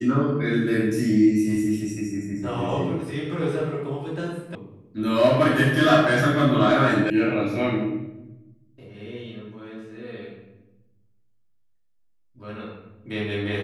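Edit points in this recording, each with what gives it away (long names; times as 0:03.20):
0:04.55: cut off before it has died away
0:07.10: cut off before it has died away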